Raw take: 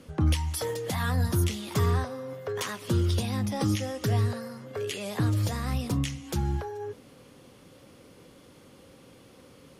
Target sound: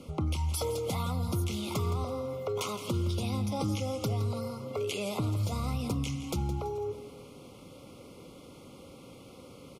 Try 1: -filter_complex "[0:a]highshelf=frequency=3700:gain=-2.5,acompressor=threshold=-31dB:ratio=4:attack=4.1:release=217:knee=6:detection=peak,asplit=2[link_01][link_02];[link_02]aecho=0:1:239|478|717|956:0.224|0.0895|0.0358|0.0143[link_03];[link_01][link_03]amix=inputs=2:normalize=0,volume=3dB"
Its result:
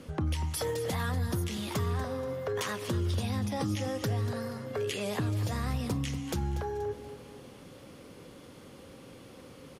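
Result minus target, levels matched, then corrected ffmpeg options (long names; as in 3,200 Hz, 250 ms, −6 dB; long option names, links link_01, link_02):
echo 73 ms late; 2,000 Hz band +5.5 dB
-filter_complex "[0:a]highshelf=frequency=3700:gain=-2.5,acompressor=threshold=-31dB:ratio=4:attack=4.1:release=217:knee=6:detection=peak,asuperstop=centerf=1700:order=20:qfactor=2.7,asplit=2[link_01][link_02];[link_02]aecho=0:1:166|332|498|664:0.224|0.0895|0.0358|0.0143[link_03];[link_01][link_03]amix=inputs=2:normalize=0,volume=3dB"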